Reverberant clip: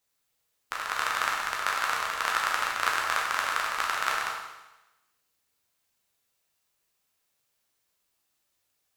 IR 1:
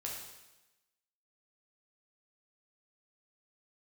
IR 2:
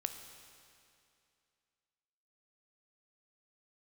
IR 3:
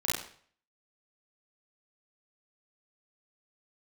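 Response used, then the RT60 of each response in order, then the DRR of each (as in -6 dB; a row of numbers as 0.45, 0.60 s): 1; 1.0, 2.5, 0.50 s; -3.0, 6.5, -8.0 dB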